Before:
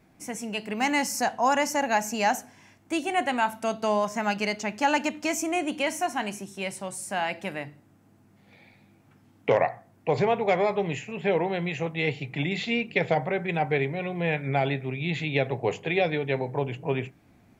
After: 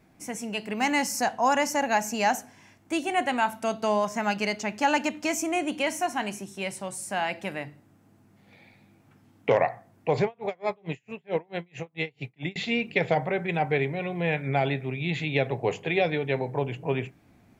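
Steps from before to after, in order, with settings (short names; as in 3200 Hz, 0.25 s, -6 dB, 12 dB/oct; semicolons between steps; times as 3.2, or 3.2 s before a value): 10.24–12.56 dB-linear tremolo 4.5 Hz, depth 36 dB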